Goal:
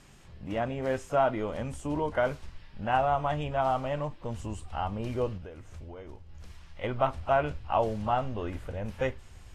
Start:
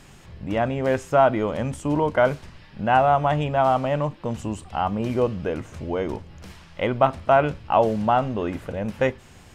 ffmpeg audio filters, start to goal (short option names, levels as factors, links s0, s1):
-filter_complex "[0:a]asubboost=boost=5.5:cutoff=73,asettb=1/sr,asplit=3[s0][s1][s2];[s0]atrim=end=5.374[s3];[s1]atrim=start=5.37:end=6.84,asetpts=PTS-STARTPTS,afade=t=in:d=0.004:c=qsin,afade=t=out:st=1.466:d=0.004:c=qsin,acompressor=threshold=0.0224:ratio=10[s4];[s2]atrim=start=6.836[s5];[s3][s4]acrossfade=d=0.004:c1=hsin:c2=qsin[s6];[s6][s5]acrossfade=d=0.004:c1=qsin:c2=hsin,volume=0.422" -ar 44100 -c:a libvorbis -b:a 32k